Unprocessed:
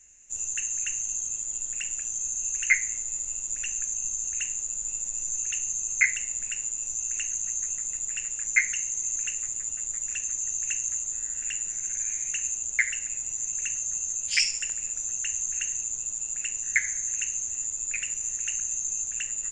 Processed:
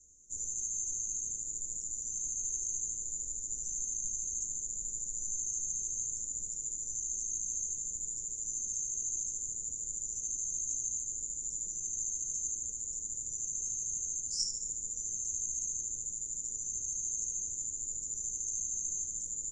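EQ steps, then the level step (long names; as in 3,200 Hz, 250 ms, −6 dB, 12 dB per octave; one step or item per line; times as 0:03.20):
Chebyshev band-stop filter 490–5,800 Hz, order 4
high-frequency loss of the air 67 metres
0.0 dB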